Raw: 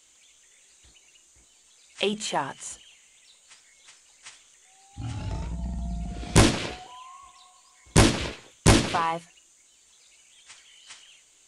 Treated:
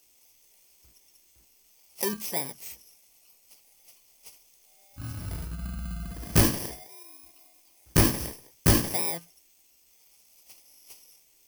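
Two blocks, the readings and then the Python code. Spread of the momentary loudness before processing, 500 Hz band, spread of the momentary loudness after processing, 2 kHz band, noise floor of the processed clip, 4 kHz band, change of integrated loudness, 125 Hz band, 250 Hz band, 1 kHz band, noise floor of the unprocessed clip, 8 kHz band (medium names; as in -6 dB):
19 LU, -5.0 dB, 20 LU, -6.0 dB, -62 dBFS, -6.0 dB, -2.0 dB, -3.0 dB, -4.0 dB, -8.5 dB, -59 dBFS, -1.0 dB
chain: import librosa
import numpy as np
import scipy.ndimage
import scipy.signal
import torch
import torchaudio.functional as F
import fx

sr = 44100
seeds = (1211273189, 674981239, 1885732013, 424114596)

y = fx.bit_reversed(x, sr, seeds[0], block=32)
y = y * 10.0 ** (-3.0 / 20.0)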